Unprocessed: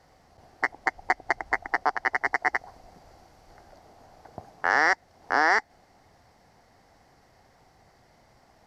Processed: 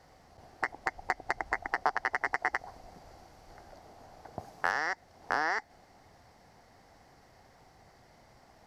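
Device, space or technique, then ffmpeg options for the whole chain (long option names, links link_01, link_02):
de-esser from a sidechain: -filter_complex "[0:a]asettb=1/sr,asplit=3[link_01][link_02][link_03];[link_01]atrim=end=4.394[link_04];[link_02]atrim=start=4.39:end=4.87,asetpts=PTS-STARTPTS,afade=type=in:duration=0.004:curve=qsin,afade=type=out:start_time=0.476:duration=0.004:curve=qsin,highshelf=frequency=5500:gain=6[link_05];[link_03]atrim=start=4.866[link_06];[link_04][link_05]acrossfade=duration=0.004:curve1=hsin:curve2=qsin[link_07];[link_07][link_06]acrossfade=duration=0.004:curve1=qsin:curve2=hsin,asplit=2[link_08][link_09];[link_09]highpass=6800,apad=whole_len=382014[link_10];[link_08][link_10]sidechaincompress=threshold=-49dB:ratio=8:attack=4.7:release=46"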